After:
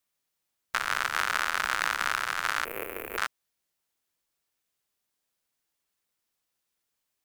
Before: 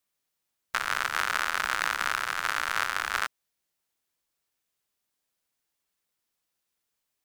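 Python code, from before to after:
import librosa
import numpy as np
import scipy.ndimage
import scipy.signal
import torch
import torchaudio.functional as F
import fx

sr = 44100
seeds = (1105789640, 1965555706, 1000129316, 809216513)

y = fx.curve_eq(x, sr, hz=(170.0, 450.0, 820.0, 1500.0, 2500.0, 3700.0, 5700.0, 14000.0), db=(0, 14, -8, -17, -4, -23, -25, 10), at=(2.65, 3.18))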